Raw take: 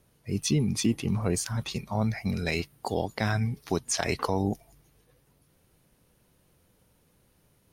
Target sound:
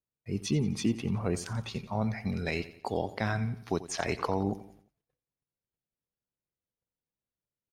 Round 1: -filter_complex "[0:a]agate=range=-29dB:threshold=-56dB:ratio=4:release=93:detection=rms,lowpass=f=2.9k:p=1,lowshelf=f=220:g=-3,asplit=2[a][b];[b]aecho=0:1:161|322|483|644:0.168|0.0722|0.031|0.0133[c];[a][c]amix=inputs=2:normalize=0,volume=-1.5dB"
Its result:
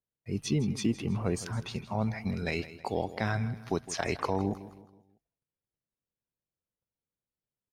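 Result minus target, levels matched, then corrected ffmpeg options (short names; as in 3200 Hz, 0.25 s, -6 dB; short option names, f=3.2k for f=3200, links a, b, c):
echo 73 ms late
-filter_complex "[0:a]agate=range=-29dB:threshold=-56dB:ratio=4:release=93:detection=rms,lowpass=f=2.9k:p=1,lowshelf=f=220:g=-3,asplit=2[a][b];[b]aecho=0:1:88|176|264|352:0.168|0.0722|0.031|0.0133[c];[a][c]amix=inputs=2:normalize=0,volume=-1.5dB"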